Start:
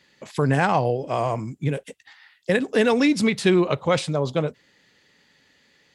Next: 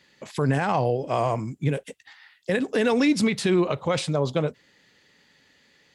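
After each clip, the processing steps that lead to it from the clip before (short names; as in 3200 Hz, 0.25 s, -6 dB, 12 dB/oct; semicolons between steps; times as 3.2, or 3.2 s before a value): limiter -12.5 dBFS, peak gain reduction 7.5 dB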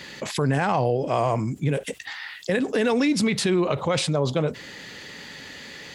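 fast leveller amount 50%; gain -2 dB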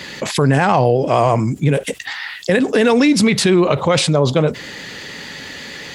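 vibrato 8.6 Hz 31 cents; gain +8.5 dB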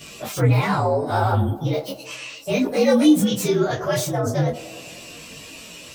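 inharmonic rescaling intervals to 118%; band-limited delay 99 ms, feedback 68%, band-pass 500 Hz, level -14 dB; detuned doubles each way 13 cents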